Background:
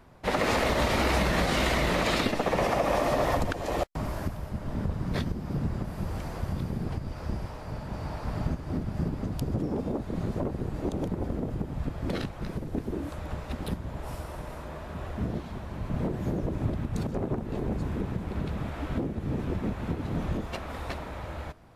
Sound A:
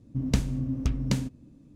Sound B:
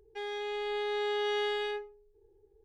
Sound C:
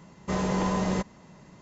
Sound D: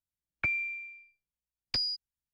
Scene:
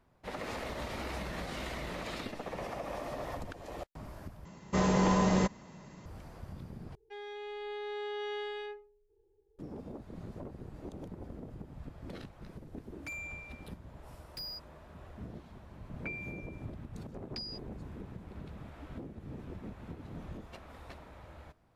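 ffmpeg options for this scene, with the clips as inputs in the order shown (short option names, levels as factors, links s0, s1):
-filter_complex "[4:a]asplit=2[s0][s1];[0:a]volume=0.2[s2];[2:a]lowpass=f=3700:p=1[s3];[s0]asoftclip=type=tanh:threshold=0.0251[s4];[s2]asplit=3[s5][s6][s7];[s5]atrim=end=4.454[s8];[3:a]atrim=end=1.61[s9];[s6]atrim=start=6.056:end=6.954[s10];[s3]atrim=end=2.64,asetpts=PTS-STARTPTS,volume=0.473[s11];[s7]atrim=start=9.586[s12];[s4]atrim=end=2.33,asetpts=PTS-STARTPTS,volume=0.447,afade=t=in:d=0.004:c=hsin,afade=t=out:st=2.326:d=0.004:c=hsin,adelay=12630[s13];[s1]atrim=end=2.33,asetpts=PTS-STARTPTS,volume=0.266,afade=t=in:d=0.004:c=hsin,afade=t=out:st=2.326:d=0.004:c=hsin,adelay=15620[s14];[s8][s9]acrossfade=d=0.004:c1=hsin:c2=hsin[s15];[s15][s10]acrossfade=d=0.004:c1=hsin:c2=hsin[s16];[s16][s11]acrossfade=d=0.004:c1=hsin:c2=hsin[s17];[s17][s12]acrossfade=d=0.004:c1=hsin:c2=hsin[s18];[s18][s13][s14]amix=inputs=3:normalize=0"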